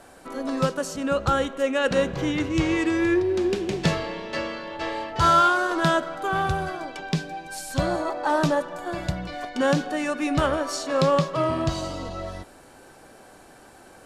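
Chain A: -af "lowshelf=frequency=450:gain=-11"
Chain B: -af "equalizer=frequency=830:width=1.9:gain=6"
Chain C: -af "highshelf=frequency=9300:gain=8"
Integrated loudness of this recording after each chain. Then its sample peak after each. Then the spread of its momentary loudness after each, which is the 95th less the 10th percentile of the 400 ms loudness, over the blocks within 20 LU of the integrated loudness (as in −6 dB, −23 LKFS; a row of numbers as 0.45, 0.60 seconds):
−28.0, −23.0, −24.5 LKFS; −10.0, −6.5, −8.5 dBFS; 12, 11, 11 LU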